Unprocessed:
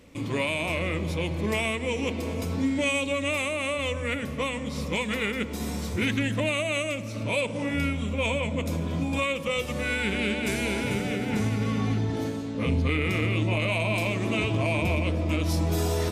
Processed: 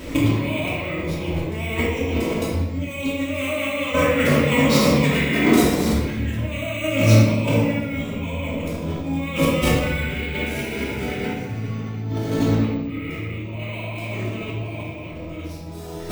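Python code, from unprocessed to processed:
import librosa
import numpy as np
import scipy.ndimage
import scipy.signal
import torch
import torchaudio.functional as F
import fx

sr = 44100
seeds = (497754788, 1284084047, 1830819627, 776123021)

y = fx.highpass(x, sr, hz=160.0, slope=12, at=(3.33, 5.64))
y = fx.spec_repair(y, sr, seeds[0], start_s=5.16, length_s=0.46, low_hz=220.0, high_hz=1500.0, source='after')
y = fx.over_compress(y, sr, threshold_db=-35.0, ratio=-0.5)
y = fx.room_shoebox(y, sr, seeds[1], volume_m3=680.0, walls='mixed', distance_m=2.8)
y = np.repeat(y[::2], 2)[:len(y)]
y = F.gain(torch.from_numpy(y), 6.5).numpy()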